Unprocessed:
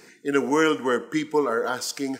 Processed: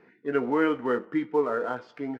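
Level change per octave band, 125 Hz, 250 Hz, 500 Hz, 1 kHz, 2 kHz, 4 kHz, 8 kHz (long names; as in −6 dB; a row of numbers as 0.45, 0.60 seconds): −3.5 dB, −2.5 dB, −3.0 dB, −4.0 dB, −5.5 dB, −15.0 dB, below −30 dB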